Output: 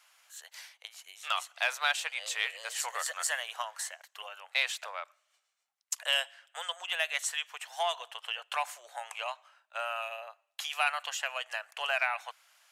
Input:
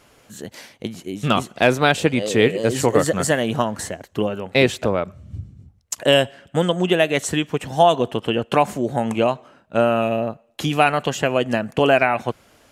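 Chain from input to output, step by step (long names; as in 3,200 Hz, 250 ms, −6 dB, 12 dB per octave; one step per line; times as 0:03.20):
in parallel at −10 dB: soft clipping −12 dBFS, distortion −12 dB
on the sum: Bessel high-pass filter 1,300 Hz, order 8
level −8.5 dB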